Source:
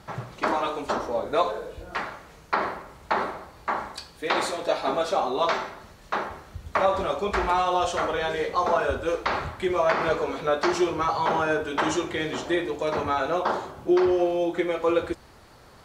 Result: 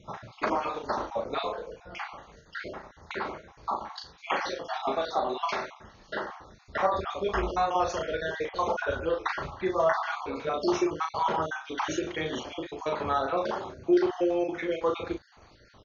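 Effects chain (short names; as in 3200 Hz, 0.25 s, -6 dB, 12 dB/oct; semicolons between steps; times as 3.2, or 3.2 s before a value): random spectral dropouts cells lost 47%; brick-wall FIR low-pass 6800 Hz; doubler 37 ms -5 dB; gain -3 dB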